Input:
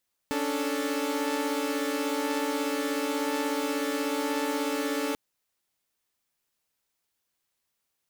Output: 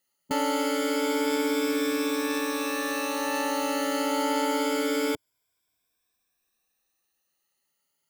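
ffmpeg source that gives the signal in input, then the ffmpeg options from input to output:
-f lavfi -i "aevalsrc='0.0355*((2*mod(277.18*t,1)-1)+(2*mod(293.66*t,1)-1)+(2*mod(440*t,1)-1))':d=4.84:s=44100"
-af "afftfilt=real='re*pow(10,14/40*sin(2*PI*(1.7*log(max(b,1)*sr/1024/100)/log(2)-(0.26)*(pts-256)/sr)))':imag='im*pow(10,14/40*sin(2*PI*(1.7*log(max(b,1)*sr/1024/100)/log(2)-(0.26)*(pts-256)/sr)))':win_size=1024:overlap=0.75"

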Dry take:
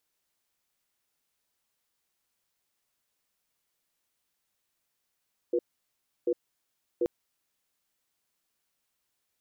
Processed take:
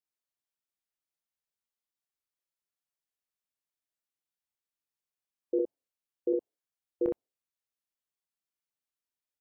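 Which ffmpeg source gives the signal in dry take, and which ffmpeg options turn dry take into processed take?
-f lavfi -i "aevalsrc='0.0501*(sin(2*PI*352*t)+sin(2*PI*486*t))*clip(min(mod(t,0.74),0.06-mod(t,0.74))/0.005,0,1)':d=1.53:s=44100"
-filter_complex "[0:a]afftdn=nr=18:nf=-56,asplit=2[a][b];[b]aecho=0:1:26|63:0.376|0.708[c];[a][c]amix=inputs=2:normalize=0"

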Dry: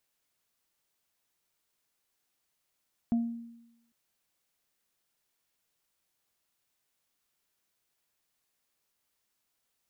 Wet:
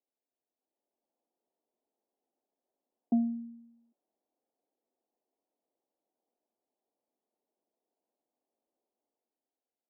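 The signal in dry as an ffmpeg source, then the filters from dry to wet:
-f lavfi -i "aevalsrc='0.0794*pow(10,-3*t/0.92)*sin(2*PI*233*t)+0.0112*pow(10,-3*t/0.35)*sin(2*PI*695*t)':d=0.8:s=44100"
-af "dynaudnorm=f=120:g=13:m=9dB,flanger=delay=2.5:depth=2.4:regen=-82:speed=0.21:shape=sinusoidal,asuperpass=centerf=430:order=8:qfactor=0.73"

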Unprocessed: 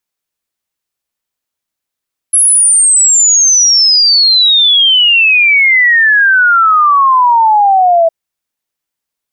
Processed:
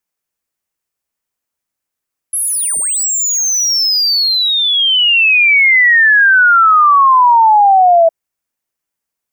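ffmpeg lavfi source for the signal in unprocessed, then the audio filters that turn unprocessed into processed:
-f lavfi -i "aevalsrc='0.596*clip(min(t,5.76-t)/0.01,0,1)*sin(2*PI*11000*5.76/log(650/11000)*(exp(log(650/11000)*t/5.76)-1))':d=5.76:s=44100"
-filter_complex "[0:a]equalizer=f=3.7k:w=1.8:g=-5.5,acrossover=split=1100|2900|3800[a][b][c][d];[d]asoftclip=type=tanh:threshold=-15.5dB[e];[a][b][c][e]amix=inputs=4:normalize=0"

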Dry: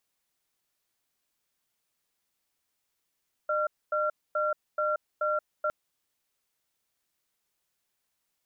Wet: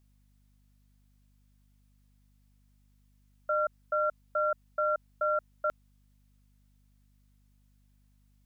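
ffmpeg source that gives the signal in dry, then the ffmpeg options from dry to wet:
-f lavfi -i "aevalsrc='0.0422*(sin(2*PI*607*t)+sin(2*PI*1370*t))*clip(min(mod(t,0.43),0.18-mod(t,0.43))/0.005,0,1)':d=2.21:s=44100"
-af "aeval=exprs='val(0)+0.000631*(sin(2*PI*50*n/s)+sin(2*PI*2*50*n/s)/2+sin(2*PI*3*50*n/s)/3+sin(2*PI*4*50*n/s)/4+sin(2*PI*5*50*n/s)/5)':c=same"

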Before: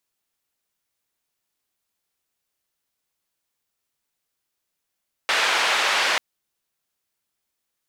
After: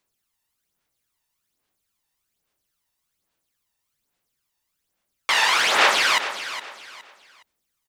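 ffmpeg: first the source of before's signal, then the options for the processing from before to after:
-f lavfi -i "anoisesrc=c=white:d=0.89:r=44100:seed=1,highpass=f=690,lowpass=f=2900,volume=-6.6dB"
-af "aphaser=in_gain=1:out_gain=1:delay=1.1:decay=0.6:speed=1.2:type=sinusoidal,aecho=1:1:415|830|1245:0.251|0.0728|0.0211"

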